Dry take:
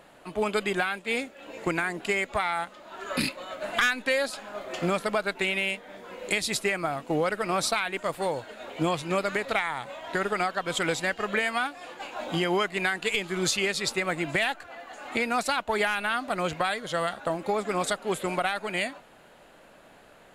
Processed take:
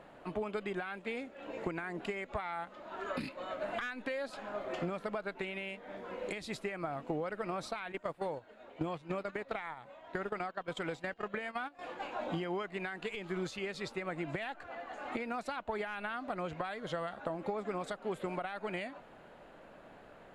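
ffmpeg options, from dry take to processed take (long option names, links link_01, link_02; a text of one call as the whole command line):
ffmpeg -i in.wav -filter_complex "[0:a]asettb=1/sr,asplit=3[link_01][link_02][link_03];[link_01]atrim=end=7.924[link_04];[link_02]atrim=start=7.92:end=11.79,asetpts=PTS-STARTPTS,afade=type=in:duration=0.004:curve=qsin,afade=type=out:start_time=3.866:duration=0.004:curve=qsin,agate=range=-12dB:threshold=-32dB:ratio=16:release=100:detection=peak[link_05];[link_03]atrim=start=11.786[link_06];[link_04][link_05]acrossfade=duration=0.004:curve1=hsin:curve2=qsin[link_07];[link_07][link_06]acrossfade=duration=0.004:curve1=qsin:curve2=hsin,alimiter=limit=-17dB:level=0:latency=1:release=251,acompressor=threshold=-33dB:ratio=6,lowpass=frequency=1500:poles=1" out.wav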